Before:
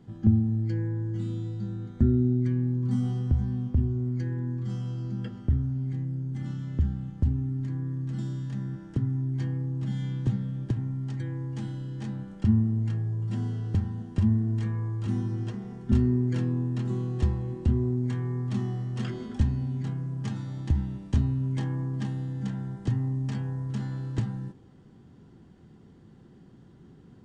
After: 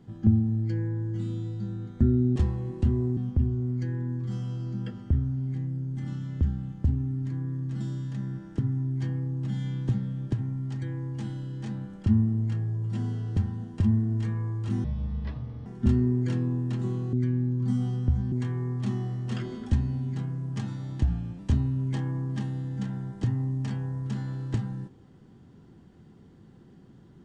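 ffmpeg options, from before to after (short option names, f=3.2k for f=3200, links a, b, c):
-filter_complex "[0:a]asplit=9[a][b][c][d][e][f][g][h][i];[a]atrim=end=2.362[j];[b]atrim=start=17.188:end=18.002[k];[c]atrim=start=3.548:end=15.224[l];[d]atrim=start=15.22:end=15.72,asetpts=PTS-STARTPTS,asetrate=26901,aresample=44100[m];[e]atrim=start=15.716:end=17.192[n];[f]atrim=start=2.358:end=3.552[o];[g]atrim=start=17.998:end=20.714[p];[h]atrim=start=20.71:end=21.03,asetpts=PTS-STARTPTS,asetrate=39249,aresample=44100,atrim=end_sample=15856,asetpts=PTS-STARTPTS[q];[i]atrim=start=21.026[r];[j][k]acrossfade=d=0.004:c1=hsin:c2=hsin[s];[s][l]acrossfade=d=0.004:c1=hsin:c2=hsin[t];[t][m]acrossfade=d=0.004:c1=hsin:c2=hsin[u];[u][n]acrossfade=d=0.004:c1=hsin:c2=hsin[v];[v][o]acrossfade=d=0.004:c1=hsin:c2=hsin[w];[w][p]acrossfade=d=0.004:c1=hsin:c2=hsin[x];[x][q]acrossfade=d=0.004:c1=hsin:c2=hsin[y];[y][r]acrossfade=d=0.004:c1=hsin:c2=hsin"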